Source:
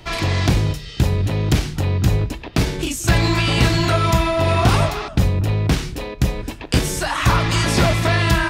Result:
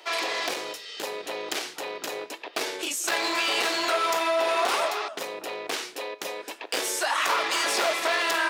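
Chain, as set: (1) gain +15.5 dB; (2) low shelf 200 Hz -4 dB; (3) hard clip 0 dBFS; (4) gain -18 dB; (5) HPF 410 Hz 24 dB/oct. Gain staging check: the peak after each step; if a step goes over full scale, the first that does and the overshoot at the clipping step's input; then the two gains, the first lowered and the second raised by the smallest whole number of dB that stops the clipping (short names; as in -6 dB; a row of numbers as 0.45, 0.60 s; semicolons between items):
+9.5, +9.0, 0.0, -18.0, -12.0 dBFS; step 1, 9.0 dB; step 1 +6.5 dB, step 4 -9 dB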